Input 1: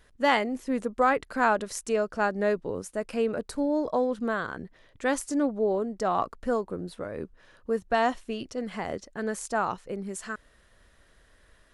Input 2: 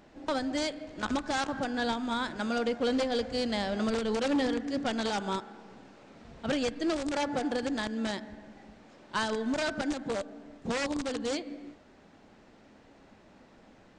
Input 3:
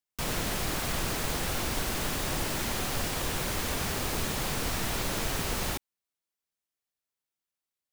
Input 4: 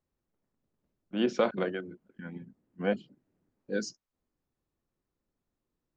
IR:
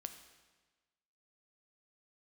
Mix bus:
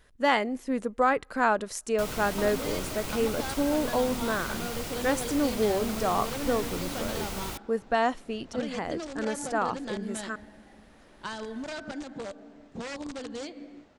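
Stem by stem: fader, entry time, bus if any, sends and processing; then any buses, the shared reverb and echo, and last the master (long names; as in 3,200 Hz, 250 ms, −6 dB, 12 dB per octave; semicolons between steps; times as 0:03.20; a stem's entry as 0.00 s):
−1.0 dB, 0.00 s, send −23.5 dB, no processing
−2.5 dB, 2.10 s, no send, downward compressor, threshold −31 dBFS, peak gain reduction 6 dB
−5.0 dB, 1.80 s, no send, notch filter 1,700 Hz, Q 9.5
−14.0 dB, 1.20 s, no send, no processing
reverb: on, RT60 1.3 s, pre-delay 6 ms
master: no processing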